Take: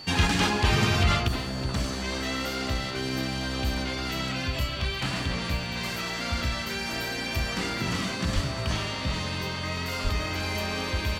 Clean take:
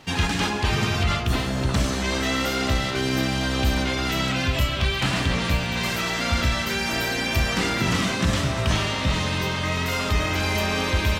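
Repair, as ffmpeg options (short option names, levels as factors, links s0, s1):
-filter_complex "[0:a]bandreject=f=4500:w=30,asplit=3[s0][s1][s2];[s0]afade=t=out:st=8.34:d=0.02[s3];[s1]highpass=f=140:w=0.5412,highpass=f=140:w=1.3066,afade=t=in:st=8.34:d=0.02,afade=t=out:st=8.46:d=0.02[s4];[s2]afade=t=in:st=8.46:d=0.02[s5];[s3][s4][s5]amix=inputs=3:normalize=0,asplit=3[s6][s7][s8];[s6]afade=t=out:st=10.03:d=0.02[s9];[s7]highpass=f=140:w=0.5412,highpass=f=140:w=1.3066,afade=t=in:st=10.03:d=0.02,afade=t=out:st=10.15:d=0.02[s10];[s8]afade=t=in:st=10.15:d=0.02[s11];[s9][s10][s11]amix=inputs=3:normalize=0,asetnsamples=n=441:p=0,asendcmd='1.28 volume volume 6.5dB',volume=1"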